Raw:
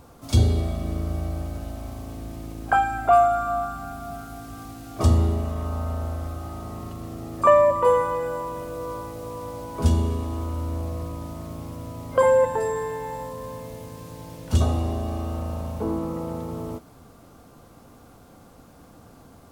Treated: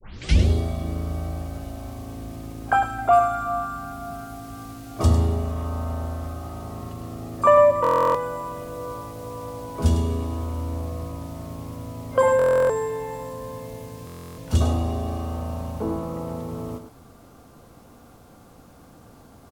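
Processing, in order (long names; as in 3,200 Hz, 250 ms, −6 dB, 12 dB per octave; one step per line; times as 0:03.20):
turntable start at the beginning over 0.48 s
single-tap delay 102 ms −9.5 dB
buffer that repeats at 0:07.82/0:12.37/0:14.05, samples 1,024, times 13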